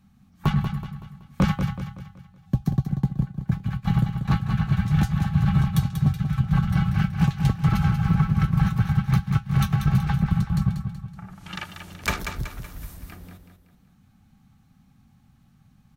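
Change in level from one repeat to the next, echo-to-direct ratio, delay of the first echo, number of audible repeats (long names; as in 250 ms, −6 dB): −7.5 dB, −6.5 dB, 188 ms, 4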